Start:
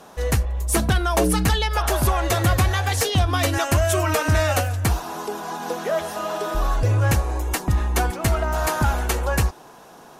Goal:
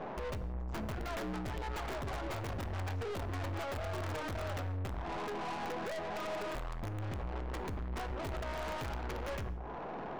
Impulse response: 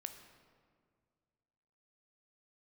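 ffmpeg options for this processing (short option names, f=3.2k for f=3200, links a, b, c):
-filter_complex "[0:a]lowpass=1.1k,bandreject=f=60:t=h:w=6,bandreject=f=120:t=h:w=6,bandreject=f=180:t=h:w=6,bandreject=f=240:t=h:w=6,acompressor=threshold=-35dB:ratio=4,aresample=16000,aeval=exprs='(mod(23.7*val(0)+1,2)-1)/23.7':c=same,aresample=44100,aeval=exprs='(tanh(224*val(0)+0.45)-tanh(0.45))/224':c=same,asplit=2[a][b];[1:a]atrim=start_sample=2205,afade=t=out:st=0.24:d=0.01,atrim=end_sample=11025[c];[b][c]afir=irnorm=-1:irlink=0,volume=5.5dB[d];[a][d]amix=inputs=2:normalize=0,volume=2.5dB"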